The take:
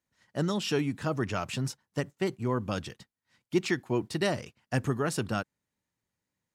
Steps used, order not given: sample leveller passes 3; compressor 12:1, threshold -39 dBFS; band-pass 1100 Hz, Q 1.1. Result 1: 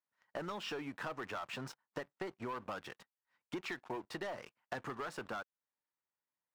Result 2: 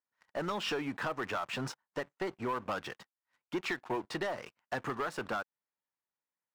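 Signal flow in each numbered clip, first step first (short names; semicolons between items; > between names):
band-pass > sample leveller > compressor; band-pass > compressor > sample leveller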